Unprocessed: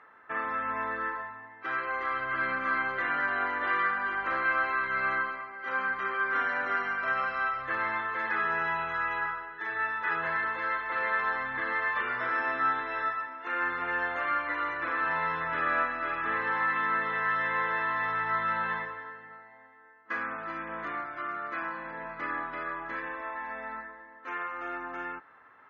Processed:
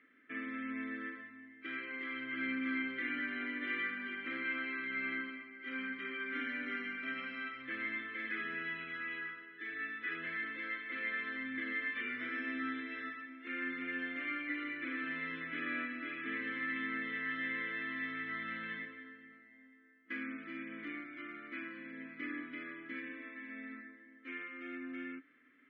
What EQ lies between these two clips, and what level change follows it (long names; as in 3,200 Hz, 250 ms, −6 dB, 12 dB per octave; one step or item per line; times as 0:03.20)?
formant filter i
+8.5 dB